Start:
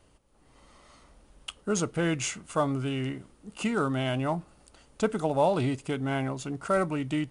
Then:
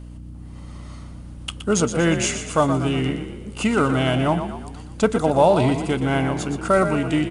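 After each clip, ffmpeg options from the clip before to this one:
-filter_complex "[0:a]aeval=exprs='val(0)+0.00631*(sin(2*PI*60*n/s)+sin(2*PI*2*60*n/s)/2+sin(2*PI*3*60*n/s)/3+sin(2*PI*4*60*n/s)/4+sin(2*PI*5*60*n/s)/5)':c=same,asplit=2[a][b];[b]asplit=6[c][d][e][f][g][h];[c]adelay=120,afreqshift=34,volume=-9dB[i];[d]adelay=240,afreqshift=68,volume=-15.2dB[j];[e]adelay=360,afreqshift=102,volume=-21.4dB[k];[f]adelay=480,afreqshift=136,volume=-27.6dB[l];[g]adelay=600,afreqshift=170,volume=-33.8dB[m];[h]adelay=720,afreqshift=204,volume=-40dB[n];[i][j][k][l][m][n]amix=inputs=6:normalize=0[o];[a][o]amix=inputs=2:normalize=0,volume=8dB"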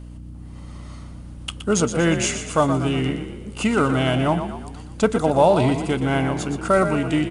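-af anull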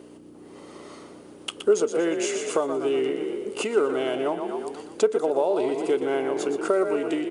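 -af "acompressor=threshold=-26dB:ratio=6,highpass=f=400:t=q:w=4.9"

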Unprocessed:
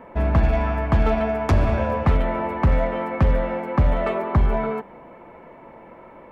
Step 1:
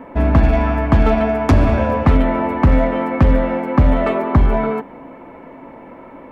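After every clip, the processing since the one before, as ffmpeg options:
-af "equalizer=f=270:w=6.7:g=13,volume=5dB"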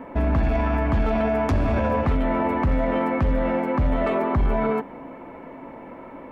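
-af "alimiter=limit=-12.5dB:level=0:latency=1:release=11,volume=-2dB"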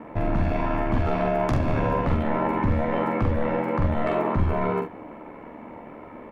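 -af "aeval=exprs='val(0)*sin(2*PI*37*n/s)':c=same,aecho=1:1:45|73:0.596|0.282"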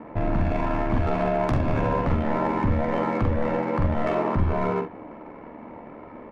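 -af "adynamicsmooth=sensitivity=5.5:basefreq=3.1k"

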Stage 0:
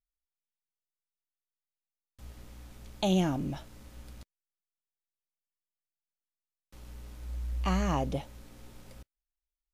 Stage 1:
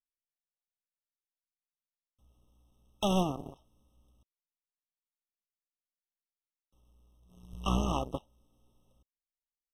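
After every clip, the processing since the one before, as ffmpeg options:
-af "aeval=exprs='0.158*(cos(1*acos(clip(val(0)/0.158,-1,1)))-cos(1*PI/2))+0.0708*(cos(2*acos(clip(val(0)/0.158,-1,1)))-cos(2*PI/2))+0.00355*(cos(5*acos(clip(val(0)/0.158,-1,1)))-cos(5*PI/2))+0.0282*(cos(7*acos(clip(val(0)/0.158,-1,1)))-cos(7*PI/2))+0.00316*(cos(8*acos(clip(val(0)/0.158,-1,1)))-cos(8*PI/2))':c=same,afftfilt=real='re*eq(mod(floor(b*sr/1024/1300),2),0)':imag='im*eq(mod(floor(b*sr/1024/1300),2),0)':win_size=1024:overlap=0.75"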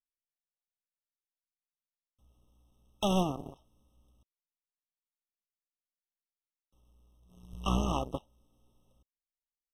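-af anull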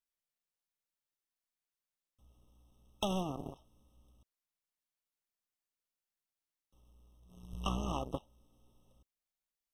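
-af "acompressor=threshold=-32dB:ratio=6,volume=1dB"

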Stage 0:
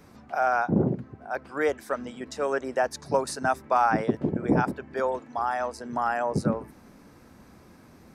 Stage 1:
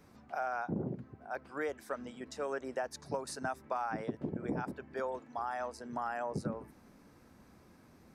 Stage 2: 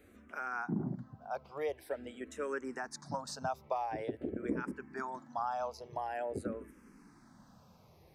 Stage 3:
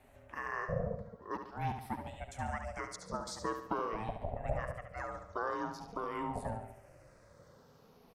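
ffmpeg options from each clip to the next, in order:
-af "acompressor=threshold=-24dB:ratio=6,volume=-8dB"
-filter_complex "[0:a]asplit=2[a][b];[b]afreqshift=-0.47[c];[a][c]amix=inputs=2:normalize=1,volume=2.5dB"
-filter_complex "[0:a]aeval=exprs='val(0)*sin(2*PI*330*n/s)':c=same,asplit=2[a][b];[b]aecho=0:1:71|142|213|284|355:0.398|0.187|0.0879|0.0413|0.0194[c];[a][c]amix=inputs=2:normalize=0,volume=2dB"

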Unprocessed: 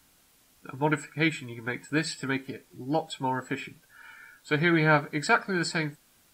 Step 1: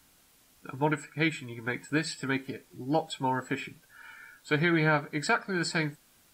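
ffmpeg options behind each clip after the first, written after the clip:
-af "alimiter=limit=-15dB:level=0:latency=1:release=453"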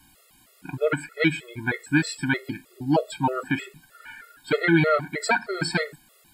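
-af "equalizer=f=5.9k:w=7.7:g=-13.5,afftfilt=real='re*gt(sin(2*PI*3.2*pts/sr)*(1-2*mod(floor(b*sr/1024/360),2)),0)':imag='im*gt(sin(2*PI*3.2*pts/sr)*(1-2*mod(floor(b*sr/1024/360),2)),0)':win_size=1024:overlap=0.75,volume=8.5dB"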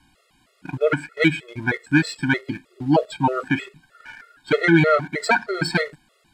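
-filter_complex "[0:a]asplit=2[a][b];[b]aeval=exprs='val(0)*gte(abs(val(0)),0.0119)':c=same,volume=-5dB[c];[a][c]amix=inputs=2:normalize=0,adynamicsmooth=sensitivity=1.5:basefreq=6.3k"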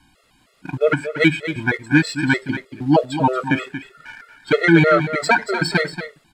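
-af "aecho=1:1:232:0.282,volume=2.5dB"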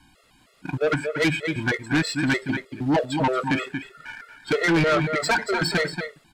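-af "asoftclip=type=tanh:threshold=-16.5dB"

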